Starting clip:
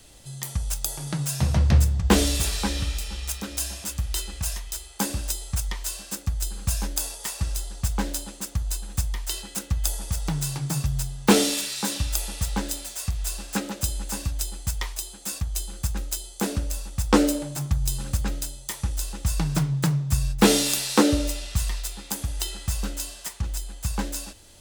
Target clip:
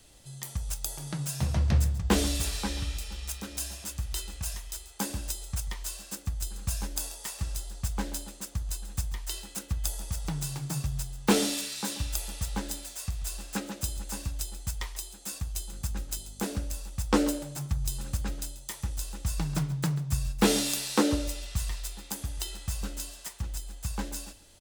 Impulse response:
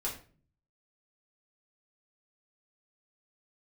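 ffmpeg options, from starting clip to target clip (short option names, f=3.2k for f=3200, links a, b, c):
-filter_complex "[0:a]asettb=1/sr,asplit=3[a][b][c];[a]atrim=end=15.714[d];[b]atrim=start=15.71:end=16.44,asetpts=PTS-STARTPTS,afade=t=in:d=0.004:c=qsin,afade=t=out:st=0.726:d=0.004:c=qsin,aeval=exprs='val(0)+0.00891*(sin(2*PI*50*n/s)+sin(2*PI*2*50*n/s)/2+sin(2*PI*3*50*n/s)/3+sin(2*PI*4*50*n/s)/4+sin(2*PI*5*50*n/s)/5)':c=same[e];[c]atrim=start=16.436[f];[d][e]acrossfade=d=0.004:c1=hsin:c2=qsin[g];[g][f]acrossfade=d=0.004:c1=qsin:c2=hsin,aecho=1:1:137:0.158,volume=-6dB"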